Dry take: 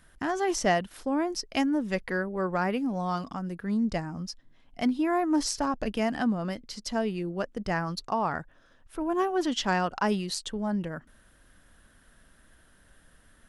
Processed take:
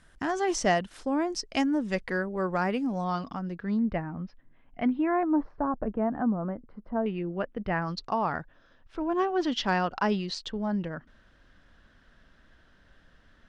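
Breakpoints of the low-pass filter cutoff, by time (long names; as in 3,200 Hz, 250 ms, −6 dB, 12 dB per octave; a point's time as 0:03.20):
low-pass filter 24 dB per octave
8,900 Hz
from 0:03.04 5,200 Hz
from 0:03.79 2,500 Hz
from 0:05.23 1,300 Hz
from 0:07.06 3,000 Hz
from 0:07.82 5,300 Hz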